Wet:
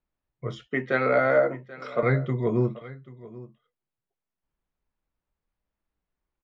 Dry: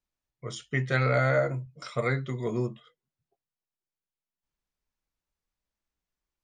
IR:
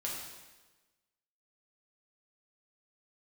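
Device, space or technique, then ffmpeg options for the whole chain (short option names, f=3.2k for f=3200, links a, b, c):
phone in a pocket: -filter_complex "[0:a]asettb=1/sr,asplit=3[a][b][c];[a]atrim=end=0.674[d];[b]atrim=start=0.67:end=2.03,asetpts=PTS-STARTPTS,afade=t=in:d=0.004:c=qsin,afade=t=out:st=1.356:d=0.004:c=qsin,highpass=f=210:w=0.5412,highpass=f=210:w=1.3066[e];[c]atrim=start=2.026[f];[d][e]acrossfade=d=0.004:c1=hsin:c2=qsin[g];[g][f]acrossfade=d=0.004:c1=qsin:c2=hsin,lowpass=3.4k,highshelf=f=2k:g=-9,aecho=1:1:785:0.119,volume=6dB"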